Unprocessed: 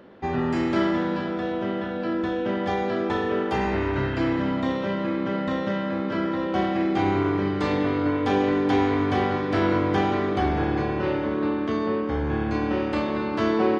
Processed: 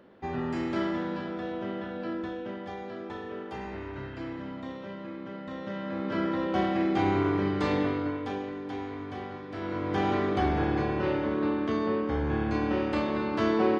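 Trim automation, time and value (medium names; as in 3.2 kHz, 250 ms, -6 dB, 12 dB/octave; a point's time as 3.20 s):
2.09 s -7 dB
2.70 s -13.5 dB
5.44 s -13.5 dB
6.19 s -3 dB
7.80 s -3 dB
8.52 s -15 dB
9.55 s -15 dB
10.10 s -3 dB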